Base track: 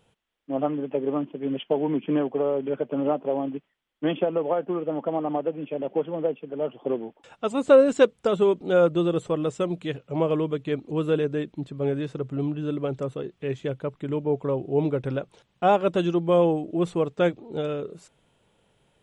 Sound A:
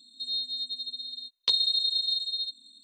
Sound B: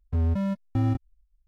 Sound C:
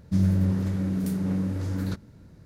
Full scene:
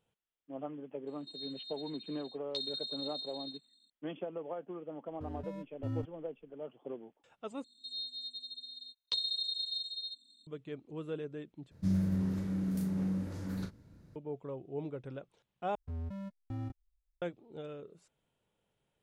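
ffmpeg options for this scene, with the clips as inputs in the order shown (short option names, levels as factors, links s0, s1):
-filter_complex "[1:a]asplit=2[s0][s1];[2:a]asplit=2[s2][s3];[0:a]volume=0.158[s4];[s2]aecho=1:1:7:0.87[s5];[3:a]asplit=2[s6][s7];[s7]adelay=37,volume=0.447[s8];[s6][s8]amix=inputs=2:normalize=0[s9];[s4]asplit=4[s10][s11][s12][s13];[s10]atrim=end=7.644[s14];[s1]atrim=end=2.83,asetpts=PTS-STARTPTS,volume=0.335[s15];[s11]atrim=start=10.466:end=11.714[s16];[s9]atrim=end=2.45,asetpts=PTS-STARTPTS,volume=0.355[s17];[s12]atrim=start=14.156:end=15.754[s18];[s3]atrim=end=1.47,asetpts=PTS-STARTPTS,volume=0.168[s19];[s13]atrim=start=17.216[s20];[s0]atrim=end=2.83,asetpts=PTS-STARTPTS,volume=0.188,afade=t=in:d=0.004:c=hsin,afade=t=out:st=2.826:d=0.004:c=hsin,adelay=1070[s21];[s5]atrim=end=1.47,asetpts=PTS-STARTPTS,volume=0.158,afade=t=in:d=0.004:c=hsin,afade=t=out:st=1.466:d=0.004:c=hsin,adelay=5080[s22];[s14][s15]acrossfade=d=0.004:c1=hsin:c2=hsin[s23];[s23][s16]acrossfade=d=0.004:c1=hsin:c2=hsin[s24];[s24][s17]acrossfade=d=0.004:c1=hsin:c2=hsin[s25];[s25][s18]acrossfade=d=0.004:c1=hsin:c2=hsin[s26];[s26][s19]acrossfade=d=0.004:c1=hsin:c2=hsin[s27];[s27][s20]acrossfade=d=0.004:c1=hsin:c2=hsin[s28];[s28][s21][s22]amix=inputs=3:normalize=0"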